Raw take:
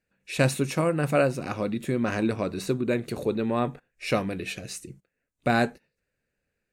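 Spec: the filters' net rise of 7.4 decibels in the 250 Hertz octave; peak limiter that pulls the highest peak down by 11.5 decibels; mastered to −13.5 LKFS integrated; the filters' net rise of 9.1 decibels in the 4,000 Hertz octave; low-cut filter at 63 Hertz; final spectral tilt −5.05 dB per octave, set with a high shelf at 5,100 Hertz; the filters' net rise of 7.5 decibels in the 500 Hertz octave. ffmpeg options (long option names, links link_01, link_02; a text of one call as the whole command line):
ffmpeg -i in.wav -af "highpass=63,equalizer=frequency=250:width_type=o:gain=7,equalizer=frequency=500:width_type=o:gain=7,equalizer=frequency=4000:width_type=o:gain=8.5,highshelf=frequency=5100:gain=5,volume=11dB,alimiter=limit=-1.5dB:level=0:latency=1" out.wav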